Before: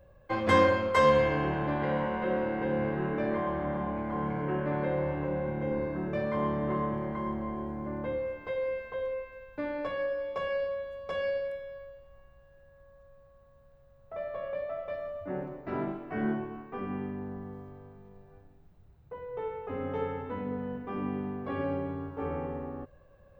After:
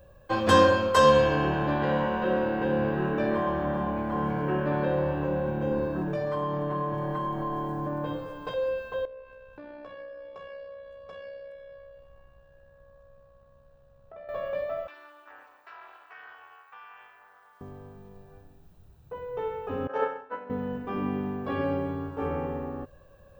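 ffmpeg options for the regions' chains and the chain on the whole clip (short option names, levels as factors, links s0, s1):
-filter_complex "[0:a]asettb=1/sr,asplit=3[s0][s1][s2];[s0]atrim=end=6.014[s3];[s1]atrim=start=6.01:end=8.54,asetpts=PTS-STARTPTS,afade=t=in:d=0.004:c=qsin,afade=t=out:st=2.526:d=0.004:c=qsin,aecho=1:1:6.6:0.97,atrim=end_sample=111573,acompressor=threshold=0.0316:ratio=5:attack=3.2:release=140:knee=1:detection=peak[s4];[s2]atrim=start=8.536[s5];[s3][s4]acrossfade=d=0.004:c1=hsin:c2=qsin[s6];[s6][s5]acrossfade=d=0.004:c1=qsin:c2=hsin,asettb=1/sr,asplit=3[s7][s8][s9];[s7]atrim=end=9.054[s10];[s8]atrim=start=9.05:end=14.29,asetpts=PTS-STARTPTS,afade=t=in:d=0.004:c=qsin,afade=t=out:st=5.236:d=0.004:c=qsin,lowpass=f=2900:p=1,tremolo=f=64:d=0.462,acompressor=threshold=0.00316:ratio=2.5:attack=3.2:release=140:knee=1:detection=peak[s11];[s9]atrim=start=14.286[s12];[s10][s11]acrossfade=d=0.004:c1=hsin:c2=qsin[s13];[s13][s12]acrossfade=d=0.004:c1=qsin:c2=hsin,asettb=1/sr,asplit=3[s14][s15][s16];[s14]atrim=end=14.874[s17];[s15]atrim=start=14.87:end=17.61,asetpts=PTS-STARTPTS,afade=t=in:d=0.004:c=qsin,afade=t=out:st=2.736:d=0.004:c=qsin,highpass=f=990:w=0.5412,highpass=f=990:w=1.3066,acompressor=threshold=0.00501:ratio=2.5:attack=3.2:release=140:knee=1:detection=peak,tremolo=f=290:d=0.857[s18];[s16]atrim=start=17.606[s19];[s17][s18]acrossfade=d=0.004:c1=hsin:c2=qsin[s20];[s20][s19]acrossfade=d=0.004:c1=qsin:c2=hsin,asettb=1/sr,asplit=3[s21][s22][s23];[s21]atrim=end=19.874[s24];[s22]atrim=start=19.87:end=20.5,asetpts=PTS-STARTPTS,afade=t=in:d=0.004:c=qsin,afade=t=out:st=0.626:d=0.004:c=qsin,highpass=430,equalizer=f=600:t=q:w=4:g=7,equalizer=f=990:t=q:w=4:g=3,equalizer=f=1500:t=q:w=4:g=9,equalizer=f=3500:t=q:w=4:g=-9,lowpass=f=6400:w=0.5412,lowpass=f=6400:w=1.3066,acontrast=53,agate=range=0.0224:threshold=0.0794:ratio=3:release=100:detection=peak[s25];[s23]atrim=start=20.496[s26];[s24][s25]acrossfade=d=0.004:c1=hsin:c2=qsin[s27];[s27][s26]acrossfade=d=0.004:c1=qsin:c2=hsin,highshelf=f=3400:g=8.5,bandreject=f=2100:w=6.8,volume=1.5"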